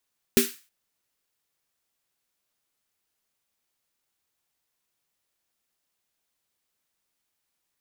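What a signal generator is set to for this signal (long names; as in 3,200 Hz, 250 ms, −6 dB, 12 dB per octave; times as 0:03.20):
synth snare length 0.32 s, tones 240 Hz, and 390 Hz, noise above 1,500 Hz, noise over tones −4 dB, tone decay 0.19 s, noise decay 0.36 s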